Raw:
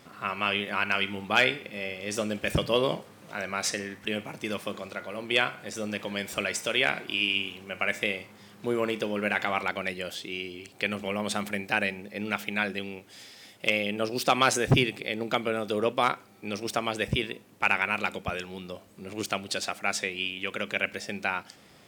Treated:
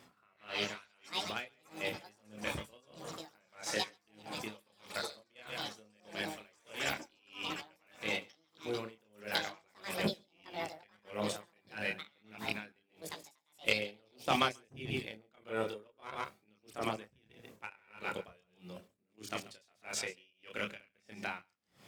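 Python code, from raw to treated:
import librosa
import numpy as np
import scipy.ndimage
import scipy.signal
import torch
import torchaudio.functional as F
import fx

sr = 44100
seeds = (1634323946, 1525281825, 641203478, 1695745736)

y = np.where(x < 0.0, 10.0 ** (-3.0 / 20.0) * x, x)
y = scipy.signal.sosfilt(scipy.signal.butter(2, 49.0, 'highpass', fs=sr, output='sos'), y)
y = fx.hum_notches(y, sr, base_hz=50, count=4)
y = fx.level_steps(y, sr, step_db=12)
y = fx.chorus_voices(y, sr, voices=4, hz=0.23, base_ms=28, depth_ms=1.1, mix_pct=45)
y = fx.echo_pitch(y, sr, ms=219, semitones=7, count=3, db_per_echo=-6.0)
y = y + 10.0 ** (-11.5 / 20.0) * np.pad(y, (int(138 * sr / 1000.0), 0))[:len(y)]
y = y * 10.0 ** (-35 * (0.5 - 0.5 * np.cos(2.0 * np.pi * 1.6 * np.arange(len(y)) / sr)) / 20.0)
y = F.gain(torch.from_numpy(y), 4.0).numpy()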